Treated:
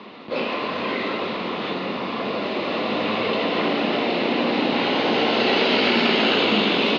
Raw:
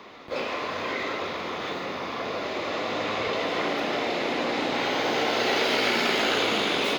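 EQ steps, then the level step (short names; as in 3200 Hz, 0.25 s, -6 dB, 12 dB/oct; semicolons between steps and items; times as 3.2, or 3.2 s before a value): speaker cabinet 160–4800 Hz, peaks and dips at 210 Hz +7 dB, 1000 Hz +3 dB, 2800 Hz +8 dB, 4200 Hz +5 dB; low shelf 490 Hz +9.5 dB; 0.0 dB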